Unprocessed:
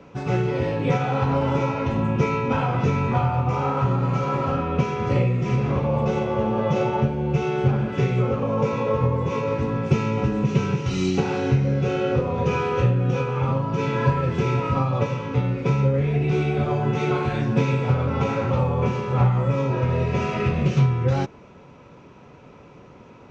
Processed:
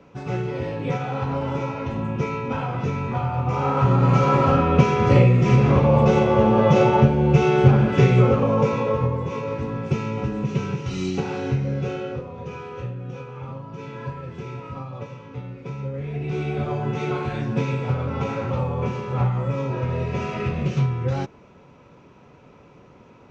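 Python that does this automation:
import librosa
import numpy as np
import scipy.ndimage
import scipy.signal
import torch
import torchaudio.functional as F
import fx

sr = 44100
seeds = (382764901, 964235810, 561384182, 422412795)

y = fx.gain(x, sr, db=fx.line((3.18, -4.0), (4.11, 6.0), (8.25, 6.0), (9.31, -3.5), (11.85, -3.5), (12.32, -12.0), (15.71, -12.0), (16.53, -3.0)))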